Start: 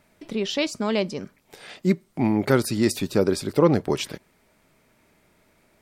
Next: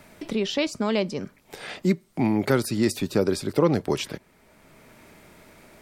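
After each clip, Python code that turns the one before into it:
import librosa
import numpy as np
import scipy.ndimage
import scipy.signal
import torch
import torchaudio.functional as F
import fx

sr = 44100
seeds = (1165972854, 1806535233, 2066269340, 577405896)

y = fx.band_squash(x, sr, depth_pct=40)
y = y * 10.0 ** (-1.0 / 20.0)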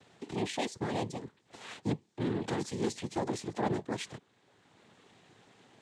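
y = np.clip(10.0 ** (16.0 / 20.0) * x, -1.0, 1.0) / 10.0 ** (16.0 / 20.0)
y = fx.noise_vocoder(y, sr, seeds[0], bands=6)
y = y * 10.0 ** (-9.0 / 20.0)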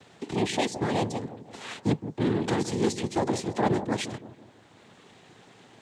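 y = fx.echo_wet_lowpass(x, sr, ms=166, feedback_pct=45, hz=960.0, wet_db=-11.0)
y = y * 10.0 ** (7.0 / 20.0)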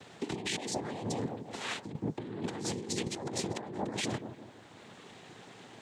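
y = fx.low_shelf(x, sr, hz=61.0, db=-6.5)
y = fx.over_compress(y, sr, threshold_db=-34.0, ratio=-1.0)
y = y * 10.0 ** (-3.0 / 20.0)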